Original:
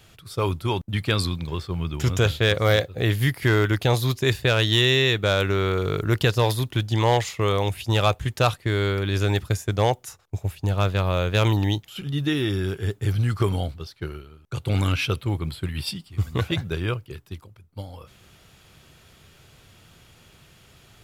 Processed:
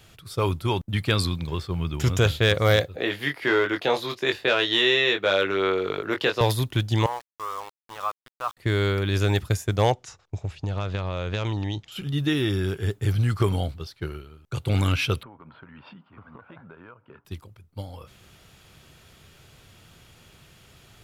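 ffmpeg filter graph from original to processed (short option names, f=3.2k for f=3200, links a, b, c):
-filter_complex "[0:a]asettb=1/sr,asplit=3[a][b][c];[a]atrim=end=2.964[d];[b]atrim=start=2.96:end=6.41,asetpts=PTS-STARTPTS,afade=t=in:d=0.004:c=qsin,afade=t=out:st=3.446:d=0.004:c=qsin,highpass=43,acrossover=split=260 4600:gain=0.0631 1 0.178[e][f][g];[e][f][g]amix=inputs=3:normalize=0,asplit=2[h][i];[i]adelay=21,volume=-5.5dB[j];[h][j]amix=inputs=2:normalize=0,atrim=end_sample=152145[k];[c]atrim=start=6.406[l];[d][k]acrossfade=d=0.004:c1=hsin:c2=qsin[m];[m][l]acrossfade=d=0.004:c1=qsin:c2=hsin,asettb=1/sr,asplit=3[n][o][p];[n]atrim=end=7.064[q];[o]atrim=start=7.06:end=8.57,asetpts=PTS-STARTPTS,afade=t=in:d=0.004:c=qsin,afade=t=out:st=1.506:d=0.004:c=qsin,bandpass=f=1.1k:t=q:w=4.4,aeval=exprs='val(0)*gte(abs(val(0)),0.0126)':c=same[r];[p]atrim=start=8.566[s];[q][r]acrossfade=d=0.004:c1=hsin:c2=qsin[t];[t][s]acrossfade=d=0.004:c1=qsin:c2=hsin,asettb=1/sr,asplit=3[u][v][w];[u]atrim=end=9.924[x];[v]atrim=start=9.92:end=11.92,asetpts=PTS-STARTPTS,afade=t=in:d=0.004:c=qsin,afade=t=out:st=1.996:d=0.004:c=qsin,lowpass=f=6.8k:w=0.5412,lowpass=f=6.8k:w=1.3066,acompressor=threshold=-23dB:ratio=10:attack=3.2:release=140:knee=1:detection=peak[y];[w]atrim=start=11.916[z];[x][y]acrossfade=d=0.004:c1=hsin:c2=qsin[aa];[aa][z]acrossfade=d=0.004:c1=qsin:c2=hsin,asettb=1/sr,asplit=3[ab][ac][ad];[ab]atrim=end=15.234[ae];[ac]atrim=start=15.23:end=17.25,asetpts=PTS-STARTPTS,afade=t=in:d=0.004:c=qsin,afade=t=out:st=2.016:d=0.004:c=qsin,highpass=240,equalizer=f=240:t=q:w=4:g=5,equalizer=f=350:t=q:w=4:g=-7,equalizer=f=600:t=q:w=4:g=3,equalizer=f=960:t=q:w=4:g=9,equalizer=f=1.4k:t=q:w=4:g=8,equalizer=f=2k:t=q:w=4:g=-6,lowpass=f=2.1k:w=0.5412,lowpass=f=2.1k:w=1.3066,acompressor=threshold=-42dB:ratio=10:attack=3.2:release=140:knee=1:detection=peak[af];[ad]atrim=start=17.246[ag];[ae][af]acrossfade=d=0.004:c1=hsin:c2=qsin[ah];[ah][ag]acrossfade=d=0.004:c1=qsin:c2=hsin"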